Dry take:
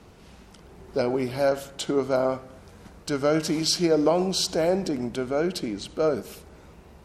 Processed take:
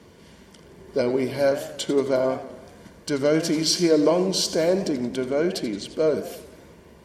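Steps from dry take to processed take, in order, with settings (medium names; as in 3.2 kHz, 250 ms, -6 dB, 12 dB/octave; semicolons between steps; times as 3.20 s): Chebyshev shaper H 6 -36 dB, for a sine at -8.5 dBFS; peaking EQ 770 Hz -13 dB 0.21 oct; comb of notches 1.3 kHz; modulated delay 89 ms, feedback 58%, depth 169 cents, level -13.5 dB; trim +3 dB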